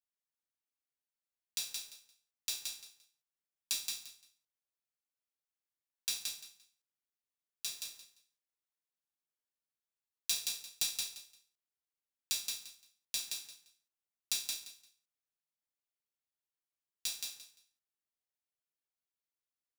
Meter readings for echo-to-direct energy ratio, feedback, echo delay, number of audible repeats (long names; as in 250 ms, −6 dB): −4.0 dB, 20%, 173 ms, 3